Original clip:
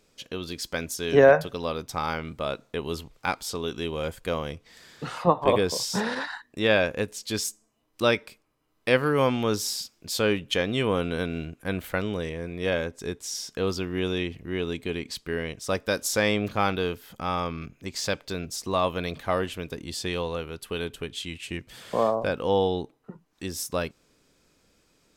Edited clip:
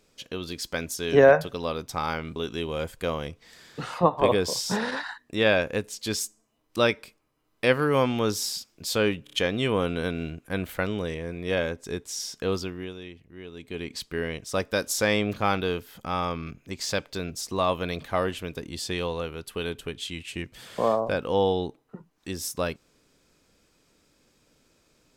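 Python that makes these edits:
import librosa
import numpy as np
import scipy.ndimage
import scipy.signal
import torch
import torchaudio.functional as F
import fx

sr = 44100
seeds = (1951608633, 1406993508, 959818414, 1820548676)

y = fx.edit(x, sr, fx.cut(start_s=2.36, length_s=1.24),
    fx.stutter(start_s=10.48, slice_s=0.03, count=4),
    fx.fade_down_up(start_s=13.66, length_s=1.46, db=-13.0, fade_s=0.43), tone=tone)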